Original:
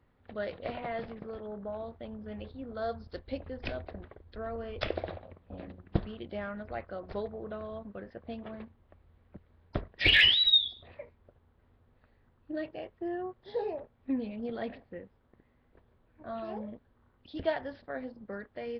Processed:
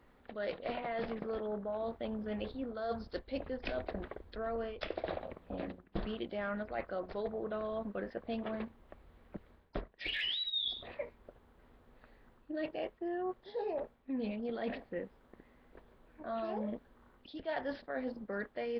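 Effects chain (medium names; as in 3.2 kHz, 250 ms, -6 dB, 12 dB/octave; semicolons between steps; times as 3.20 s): peaking EQ 97 Hz -13.5 dB 1 oct; reverse; compression 16:1, threshold -41 dBFS, peak gain reduction 23.5 dB; reverse; trim +7 dB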